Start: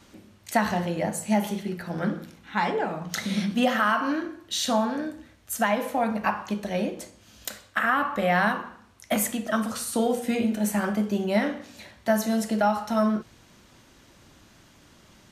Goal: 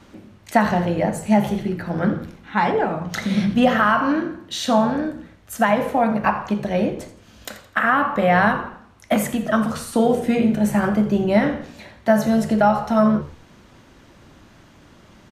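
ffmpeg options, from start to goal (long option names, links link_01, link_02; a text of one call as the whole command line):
ffmpeg -i in.wav -filter_complex "[0:a]highshelf=frequency=3400:gain=-11,asplit=2[link_01][link_02];[link_02]asplit=3[link_03][link_04][link_05];[link_03]adelay=84,afreqshift=-67,volume=-15.5dB[link_06];[link_04]adelay=168,afreqshift=-134,volume=-24.4dB[link_07];[link_05]adelay=252,afreqshift=-201,volume=-33.2dB[link_08];[link_06][link_07][link_08]amix=inputs=3:normalize=0[link_09];[link_01][link_09]amix=inputs=2:normalize=0,volume=7dB" out.wav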